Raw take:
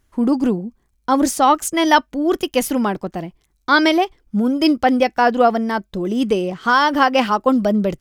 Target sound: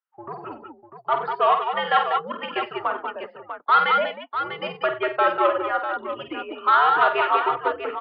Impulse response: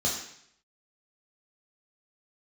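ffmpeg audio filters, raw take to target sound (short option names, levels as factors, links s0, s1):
-af "afftdn=nr=23:nf=-36,equalizer=f=1400:t=o:w=0.5:g=10.5,flanger=delay=1.8:depth=4.5:regen=-73:speed=0.27:shape=triangular,aresample=11025,asoftclip=type=tanh:threshold=0.299,aresample=44100,aecho=1:1:49|94|192|194|646:0.447|0.188|0.355|0.422|0.355,highpass=f=600:t=q:w=0.5412,highpass=f=600:t=q:w=1.307,lowpass=f=3400:t=q:w=0.5176,lowpass=f=3400:t=q:w=0.7071,lowpass=f=3400:t=q:w=1.932,afreqshift=-130,volume=0.891"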